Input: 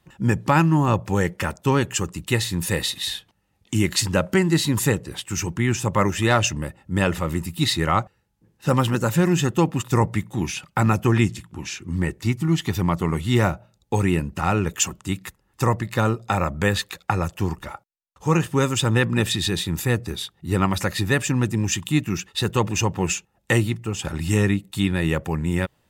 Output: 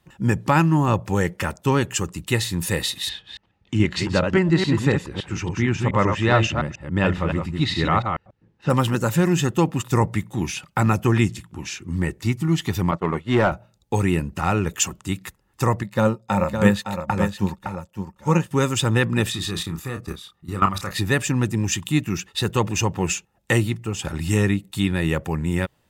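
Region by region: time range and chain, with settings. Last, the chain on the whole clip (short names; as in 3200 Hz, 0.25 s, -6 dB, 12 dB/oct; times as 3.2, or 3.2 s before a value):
3.09–8.7 reverse delay 0.141 s, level -5 dB + LPF 3600 Hz
12.91–13.52 expander -20 dBFS + high shelf 3000 Hz -10.5 dB + overdrive pedal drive 17 dB, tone 1900 Hz, clips at -7.5 dBFS
15.83–18.51 small resonant body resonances 200/540/900 Hz, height 11 dB, ringing for 90 ms + echo 0.562 s -5 dB + upward expander, over -38 dBFS
19.3–20.91 bell 1200 Hz +14.5 dB 0.22 oct + level quantiser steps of 14 dB + doubler 30 ms -7.5 dB
whole clip: dry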